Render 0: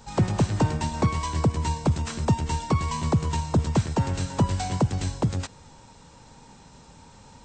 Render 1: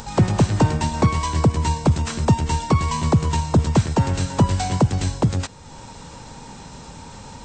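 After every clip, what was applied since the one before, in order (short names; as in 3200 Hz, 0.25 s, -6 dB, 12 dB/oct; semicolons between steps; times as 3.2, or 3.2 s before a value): upward compressor, threshold -36 dBFS; gain +5.5 dB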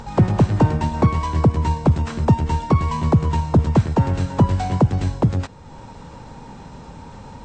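LPF 1500 Hz 6 dB/oct; gain +1.5 dB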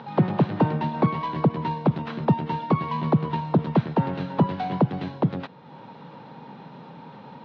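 elliptic band-pass 150–3800 Hz, stop band 40 dB; gain -2.5 dB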